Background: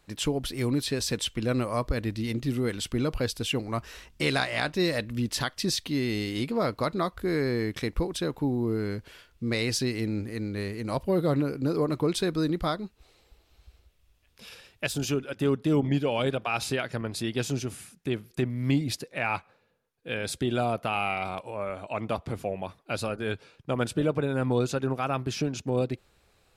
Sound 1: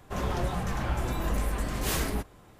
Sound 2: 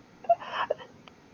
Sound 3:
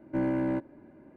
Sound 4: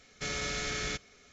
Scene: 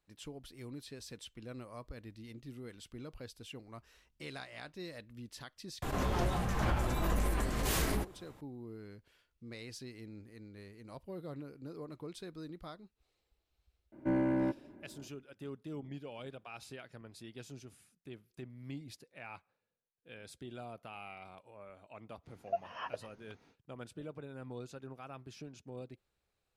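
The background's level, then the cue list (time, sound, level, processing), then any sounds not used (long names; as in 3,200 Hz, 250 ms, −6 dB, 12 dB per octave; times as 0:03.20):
background −19.5 dB
0:05.82: mix in 1 −4 dB + background raised ahead of every attack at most 25 dB per second
0:13.92: mix in 3 −2.5 dB
0:22.23: mix in 2 −11.5 dB, fades 0.05 s
not used: 4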